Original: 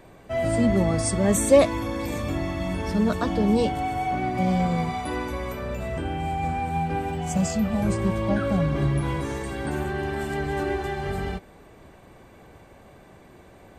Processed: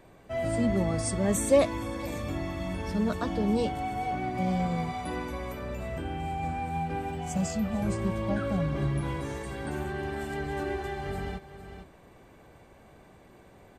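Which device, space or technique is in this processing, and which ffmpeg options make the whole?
ducked delay: -filter_complex "[0:a]asplit=3[link_01][link_02][link_03];[link_02]adelay=452,volume=-7dB[link_04];[link_03]apad=whole_len=628001[link_05];[link_04][link_05]sidechaincompress=threshold=-32dB:ratio=8:attack=5.6:release=933[link_06];[link_01][link_06]amix=inputs=2:normalize=0,volume=-5.5dB"

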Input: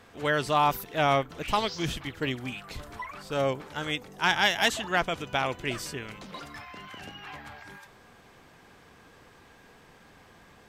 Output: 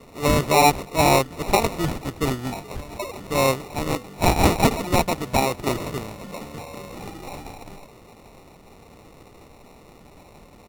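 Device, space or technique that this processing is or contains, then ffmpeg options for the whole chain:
crushed at another speed: -af "asetrate=55125,aresample=44100,acrusher=samples=22:mix=1:aa=0.000001,asetrate=35280,aresample=44100,volume=7dB"

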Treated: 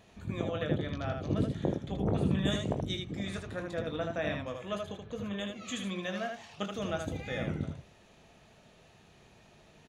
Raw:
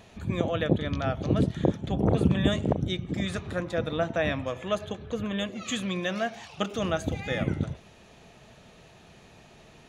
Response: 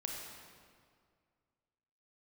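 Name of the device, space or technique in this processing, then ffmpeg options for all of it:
slapback doubling: -filter_complex "[0:a]asettb=1/sr,asplit=3[link_01][link_02][link_03];[link_01]atrim=end=2.454[link_04];[link_02]atrim=start=2.45:end=3.03,asetpts=PTS-STARTPTS,afade=type=in:duration=0.004:curve=qsin,afade=type=out:start_time=0.576:duration=0.004:curve=qsin,highshelf=frequency=3500:gain=8.5[link_05];[link_03]atrim=start=3.026[link_06];[link_04][link_05]acrossfade=duration=0.004:curve1=hsin:curve2=qsin[link_07];[link_07][link_06]acrossfade=duration=0.004:curve1=qsin:curve2=hsin,asplit=3[link_08][link_09][link_10];[link_09]adelay=20,volume=-8dB[link_11];[link_10]adelay=78,volume=-4.5dB[link_12];[link_08][link_11][link_12]amix=inputs=3:normalize=0,volume=-8dB"

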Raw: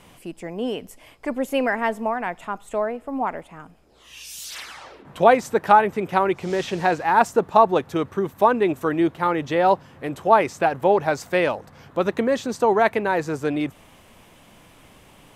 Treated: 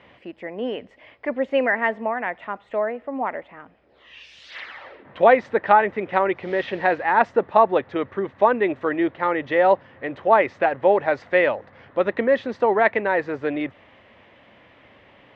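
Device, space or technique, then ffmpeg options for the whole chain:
guitar cabinet: -af "highpass=79,equalizer=frequency=160:width_type=q:width=4:gain=-9,equalizer=frequency=560:width_type=q:width=4:gain=6,equalizer=frequency=1900:width_type=q:width=4:gain=9,lowpass=frequency=3600:width=0.5412,lowpass=frequency=3600:width=1.3066,volume=-2dB"

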